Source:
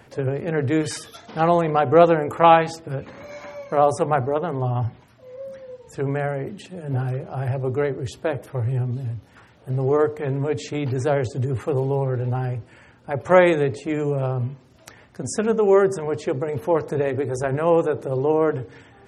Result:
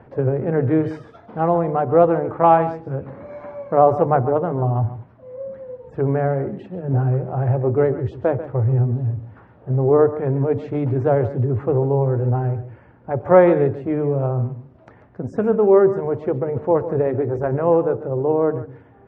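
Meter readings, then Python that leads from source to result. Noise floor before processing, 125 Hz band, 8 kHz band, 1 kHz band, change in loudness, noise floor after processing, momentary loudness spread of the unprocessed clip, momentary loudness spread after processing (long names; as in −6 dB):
−52 dBFS, +4.5 dB, below −30 dB, +0.5 dB, +2.5 dB, −49 dBFS, 16 LU, 17 LU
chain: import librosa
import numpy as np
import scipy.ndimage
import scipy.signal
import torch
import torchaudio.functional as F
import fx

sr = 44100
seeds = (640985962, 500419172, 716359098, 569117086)

p1 = scipy.signal.sosfilt(scipy.signal.butter(2, 1100.0, 'lowpass', fs=sr, output='sos'), x)
p2 = fx.rider(p1, sr, range_db=4, speed_s=2.0)
p3 = p2 + fx.echo_single(p2, sr, ms=140, db=-13.5, dry=0)
y = p3 * librosa.db_to_amplitude(2.0)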